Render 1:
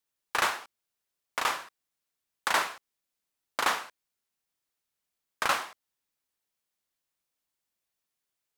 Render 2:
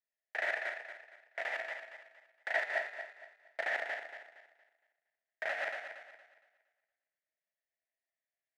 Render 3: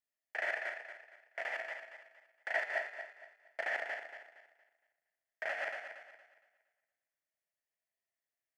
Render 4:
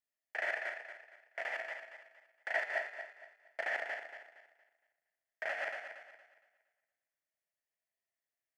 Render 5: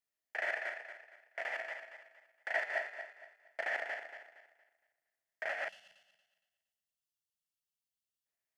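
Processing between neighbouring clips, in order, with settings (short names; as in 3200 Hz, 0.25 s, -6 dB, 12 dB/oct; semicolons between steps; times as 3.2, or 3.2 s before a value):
regenerating reverse delay 0.116 s, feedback 57%, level 0 dB; double band-pass 1100 Hz, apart 1.5 oct
notch 3800 Hz, Q 6; gain -1.5 dB
nothing audible
spectral gain 5.68–8.26, 220–2600 Hz -19 dB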